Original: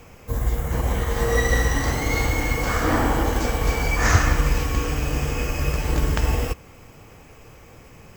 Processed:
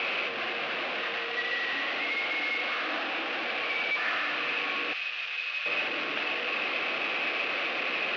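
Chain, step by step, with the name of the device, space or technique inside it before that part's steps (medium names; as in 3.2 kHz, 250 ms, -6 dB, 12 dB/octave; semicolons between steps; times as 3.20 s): digital answering machine (band-pass 330–3300 Hz; one-bit delta coder 32 kbps, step -16 dBFS; cabinet simulation 390–3700 Hz, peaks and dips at 450 Hz -8 dB, 910 Hz -10 dB, 2.6 kHz +9 dB); 4.93–5.66 s: amplifier tone stack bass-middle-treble 10-0-10; trim -8 dB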